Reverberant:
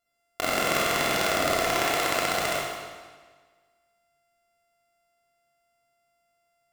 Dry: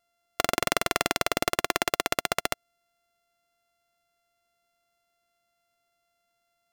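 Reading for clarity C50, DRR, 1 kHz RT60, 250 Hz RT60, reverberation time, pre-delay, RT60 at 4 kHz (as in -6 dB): -2.5 dB, -7.5 dB, 1.5 s, 1.5 s, 1.5 s, 21 ms, 1.4 s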